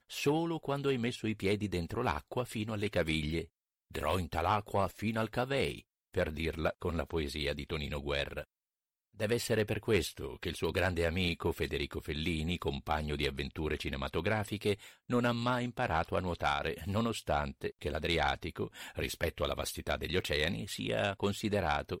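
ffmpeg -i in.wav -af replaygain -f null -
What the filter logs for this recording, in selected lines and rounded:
track_gain = +14.4 dB
track_peak = 0.072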